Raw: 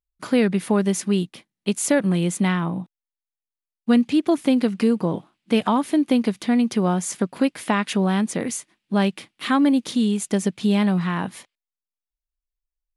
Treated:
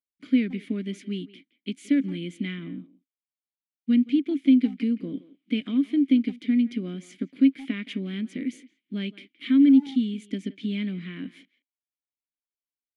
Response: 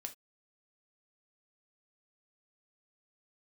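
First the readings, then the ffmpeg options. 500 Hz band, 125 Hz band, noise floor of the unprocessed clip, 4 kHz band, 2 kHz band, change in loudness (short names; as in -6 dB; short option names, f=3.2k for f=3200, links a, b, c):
-15.0 dB, -11.5 dB, under -85 dBFS, -7.5 dB, -10.0 dB, -3.5 dB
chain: -filter_complex "[0:a]asplit=3[a][b][c];[a]bandpass=f=270:t=q:w=8,volume=0dB[d];[b]bandpass=f=2.29k:t=q:w=8,volume=-6dB[e];[c]bandpass=f=3.01k:t=q:w=8,volume=-9dB[f];[d][e][f]amix=inputs=3:normalize=0,asplit=2[g][h];[h]adelay=170,highpass=300,lowpass=3.4k,asoftclip=type=hard:threshold=-22.5dB,volume=-17dB[i];[g][i]amix=inputs=2:normalize=0,volume=3.5dB"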